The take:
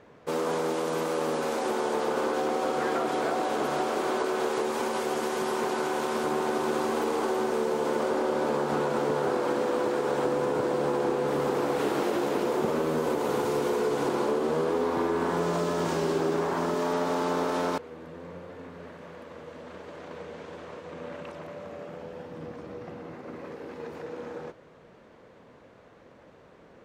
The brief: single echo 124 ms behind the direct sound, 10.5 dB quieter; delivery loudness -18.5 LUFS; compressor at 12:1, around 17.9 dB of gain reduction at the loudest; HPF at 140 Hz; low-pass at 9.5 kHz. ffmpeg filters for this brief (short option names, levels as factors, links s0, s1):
-af "highpass=140,lowpass=9500,acompressor=threshold=0.00794:ratio=12,aecho=1:1:124:0.299,volume=22.4"